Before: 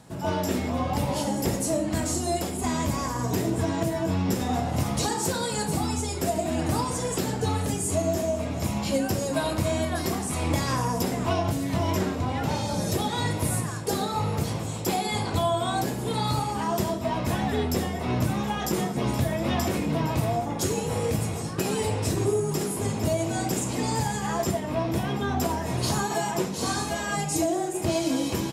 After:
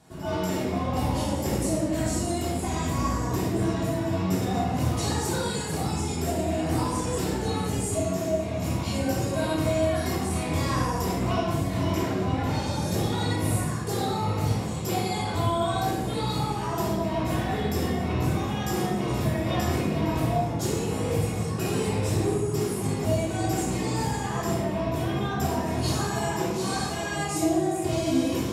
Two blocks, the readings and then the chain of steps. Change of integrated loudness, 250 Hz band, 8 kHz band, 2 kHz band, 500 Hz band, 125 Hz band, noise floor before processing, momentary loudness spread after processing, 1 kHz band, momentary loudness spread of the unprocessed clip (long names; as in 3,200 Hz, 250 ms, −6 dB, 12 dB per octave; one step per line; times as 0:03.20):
0.0 dB, +0.5 dB, −3.0 dB, −0.5 dB, 0.0 dB, +1.0 dB, −31 dBFS, 3 LU, −1.0 dB, 2 LU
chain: rectangular room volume 590 cubic metres, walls mixed, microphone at 3.3 metres
level −8.5 dB